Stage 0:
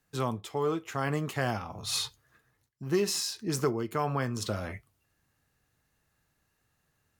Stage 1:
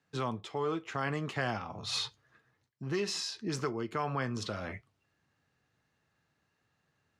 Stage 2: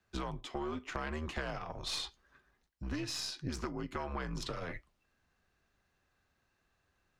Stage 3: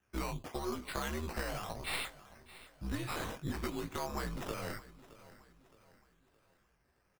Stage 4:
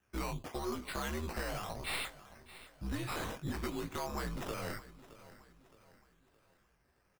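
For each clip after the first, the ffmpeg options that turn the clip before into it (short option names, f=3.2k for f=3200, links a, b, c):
-filter_complex "[0:a]highpass=100,acrossover=split=1100[a][b];[a]alimiter=level_in=2dB:limit=-24dB:level=0:latency=1:release=239,volume=-2dB[c];[b]lowpass=4.9k[d];[c][d]amix=inputs=2:normalize=0"
-af "afreqshift=-73,acompressor=threshold=-35dB:ratio=6,aeval=exprs='0.0501*(cos(1*acos(clip(val(0)/0.0501,-1,1)))-cos(1*PI/2))+0.0158*(cos(2*acos(clip(val(0)/0.0501,-1,1)))-cos(2*PI/2))':c=same"
-af "flanger=delay=15.5:depth=5.5:speed=1.6,acrusher=samples=10:mix=1:aa=0.000001:lfo=1:lforange=6:lforate=0.9,aecho=1:1:618|1236|1854|2472:0.126|0.0541|0.0233|0.01,volume=3.5dB"
-af "asoftclip=type=tanh:threshold=-28.5dB,volume=1dB"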